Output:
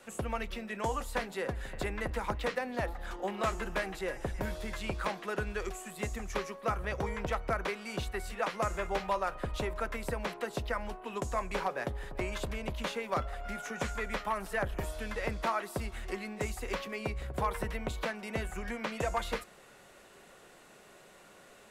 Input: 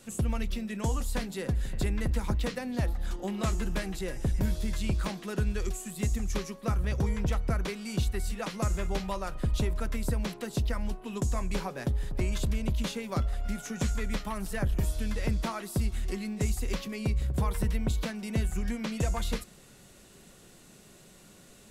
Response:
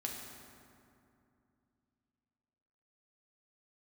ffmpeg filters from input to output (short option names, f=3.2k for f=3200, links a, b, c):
-filter_complex "[0:a]acrossover=split=430 2500:gain=0.158 1 0.251[a][b][c];[a][b][c]amix=inputs=3:normalize=0,aeval=exprs='0.0473*(abs(mod(val(0)/0.0473+3,4)-2)-1)':c=same,volume=5.5dB"